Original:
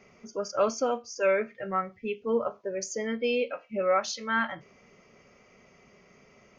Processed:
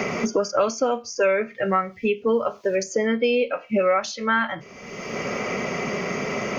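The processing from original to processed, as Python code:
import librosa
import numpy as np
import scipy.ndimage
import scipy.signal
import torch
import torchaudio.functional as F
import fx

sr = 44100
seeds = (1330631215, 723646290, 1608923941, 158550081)

y = fx.band_squash(x, sr, depth_pct=100)
y = F.gain(torch.from_numpy(y), 6.5).numpy()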